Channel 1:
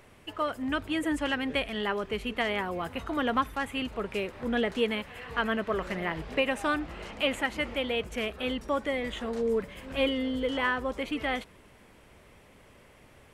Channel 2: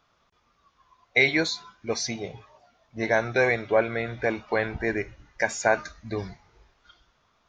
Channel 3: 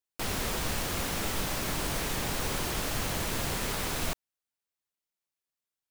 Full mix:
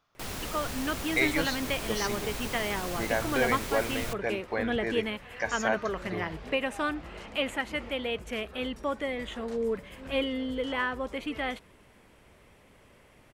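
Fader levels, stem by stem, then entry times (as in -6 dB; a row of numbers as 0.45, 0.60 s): -2.0, -6.5, -5.0 dB; 0.15, 0.00, 0.00 s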